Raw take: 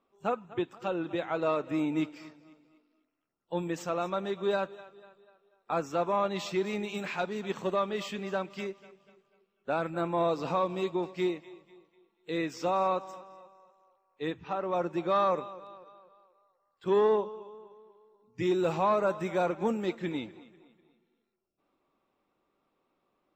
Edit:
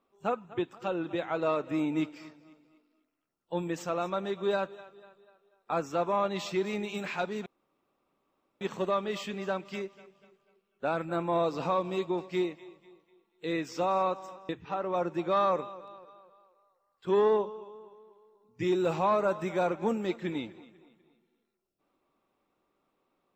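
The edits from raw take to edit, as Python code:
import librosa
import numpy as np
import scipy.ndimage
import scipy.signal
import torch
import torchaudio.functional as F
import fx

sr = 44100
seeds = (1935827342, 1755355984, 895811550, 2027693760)

y = fx.edit(x, sr, fx.insert_room_tone(at_s=7.46, length_s=1.15),
    fx.cut(start_s=13.34, length_s=0.94), tone=tone)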